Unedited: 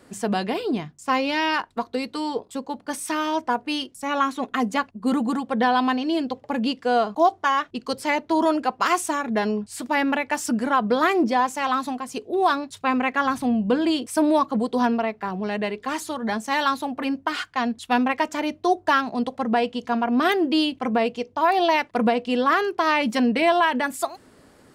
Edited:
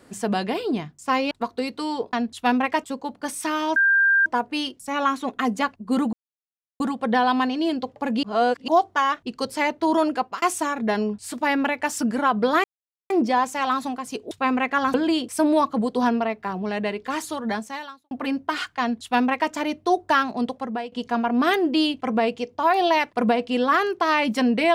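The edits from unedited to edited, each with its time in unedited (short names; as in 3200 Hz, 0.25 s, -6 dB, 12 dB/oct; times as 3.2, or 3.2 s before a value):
1.31–1.67 cut
3.41 add tone 1590 Hz -14.5 dBFS 0.50 s
5.28 insert silence 0.67 s
6.71–7.16 reverse
8.6–8.9 fade out equal-power
11.12 insert silence 0.46 s
12.33–12.74 cut
13.37–13.72 cut
16.29–16.89 fade out quadratic
17.59–18.3 copy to 2.49
19.21–19.7 fade out, to -15.5 dB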